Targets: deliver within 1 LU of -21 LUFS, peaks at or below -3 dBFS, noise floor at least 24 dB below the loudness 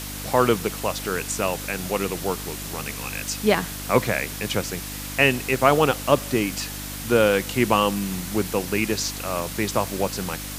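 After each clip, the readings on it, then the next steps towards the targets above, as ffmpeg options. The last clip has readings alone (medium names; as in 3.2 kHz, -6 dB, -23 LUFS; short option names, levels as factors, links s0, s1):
hum 50 Hz; highest harmonic 300 Hz; hum level -35 dBFS; noise floor -33 dBFS; noise floor target -48 dBFS; loudness -23.5 LUFS; peak level -2.0 dBFS; loudness target -21.0 LUFS
-> -af "bandreject=f=50:t=h:w=4,bandreject=f=100:t=h:w=4,bandreject=f=150:t=h:w=4,bandreject=f=200:t=h:w=4,bandreject=f=250:t=h:w=4,bandreject=f=300:t=h:w=4"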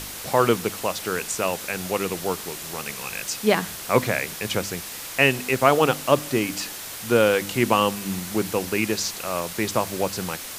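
hum not found; noise floor -36 dBFS; noise floor target -48 dBFS
-> -af "afftdn=nr=12:nf=-36"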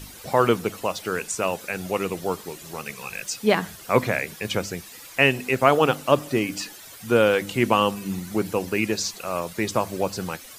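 noise floor -43 dBFS; noise floor target -48 dBFS
-> -af "afftdn=nr=6:nf=-43"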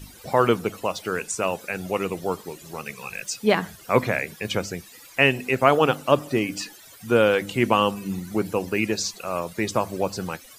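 noise floor -47 dBFS; noise floor target -48 dBFS
-> -af "afftdn=nr=6:nf=-47"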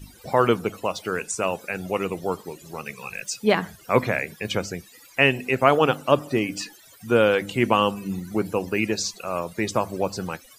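noise floor -50 dBFS; loudness -24.0 LUFS; peak level -1.5 dBFS; loudness target -21.0 LUFS
-> -af "volume=1.41,alimiter=limit=0.708:level=0:latency=1"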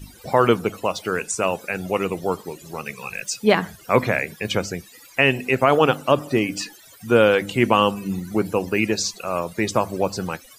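loudness -21.5 LUFS; peak level -3.0 dBFS; noise floor -48 dBFS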